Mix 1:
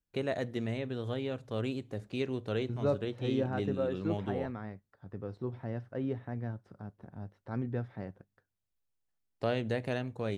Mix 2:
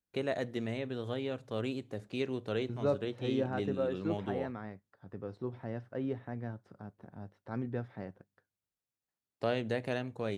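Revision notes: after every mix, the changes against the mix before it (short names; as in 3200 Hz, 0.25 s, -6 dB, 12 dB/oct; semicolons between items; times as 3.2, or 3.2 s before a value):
master: add HPF 140 Hz 6 dB/oct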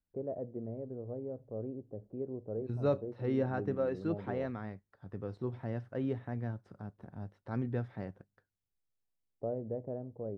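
first voice: add ladder low-pass 720 Hz, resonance 35%; master: remove HPF 140 Hz 6 dB/oct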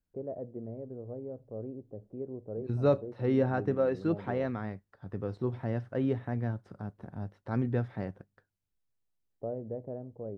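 second voice +5.0 dB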